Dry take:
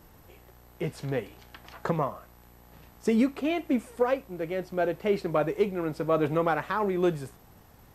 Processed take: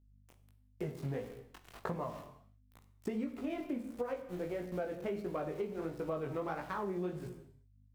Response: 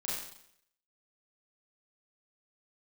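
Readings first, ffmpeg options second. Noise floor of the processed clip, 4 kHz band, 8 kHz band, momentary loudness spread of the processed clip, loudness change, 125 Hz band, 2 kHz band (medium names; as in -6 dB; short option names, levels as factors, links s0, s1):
-66 dBFS, -13.5 dB, no reading, 10 LU, -11.5 dB, -8.5 dB, -12.5 dB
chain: -filter_complex "[0:a]asplit=2[s0][s1];[s1]adynamicsmooth=sensitivity=3:basefreq=1500,volume=1[s2];[s0][s2]amix=inputs=2:normalize=0,aeval=exprs='val(0)*gte(abs(val(0)),0.0133)':c=same,aeval=exprs='val(0)+0.00141*(sin(2*PI*50*n/s)+sin(2*PI*2*50*n/s)/2+sin(2*PI*3*50*n/s)/3+sin(2*PI*4*50*n/s)/4+sin(2*PI*5*50*n/s)/5)':c=same,asplit=2[s3][s4];[1:a]atrim=start_sample=2205,afade=t=out:st=0.44:d=0.01,atrim=end_sample=19845,lowshelf=f=320:g=7.5[s5];[s4][s5]afir=irnorm=-1:irlink=0,volume=0.237[s6];[s3][s6]amix=inputs=2:normalize=0,flanger=delay=16.5:depth=6:speed=1.5,acompressor=threshold=0.0355:ratio=5,volume=0.473"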